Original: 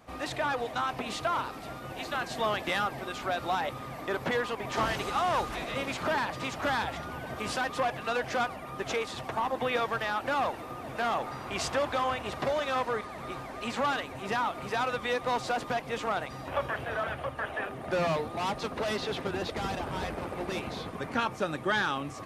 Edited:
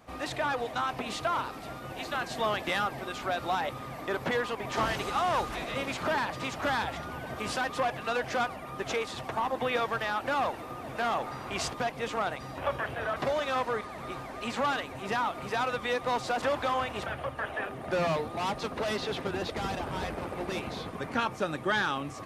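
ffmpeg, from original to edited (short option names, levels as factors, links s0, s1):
-filter_complex "[0:a]asplit=5[s0][s1][s2][s3][s4];[s0]atrim=end=11.722[s5];[s1]atrim=start=15.618:end=17.062[s6];[s2]atrim=start=12.358:end=15.622[s7];[s3]atrim=start=11.718:end=12.362[s8];[s4]atrim=start=17.058[s9];[s5][s6]acrossfade=d=0.004:c1=hsin:c2=hsin[s10];[s10][s7]acrossfade=d=0.004:c1=hsin:c2=hsin[s11];[s11][s8]acrossfade=d=0.004:c1=hsin:c2=hsin[s12];[s12][s9]acrossfade=d=0.004:c1=hsin:c2=hsin"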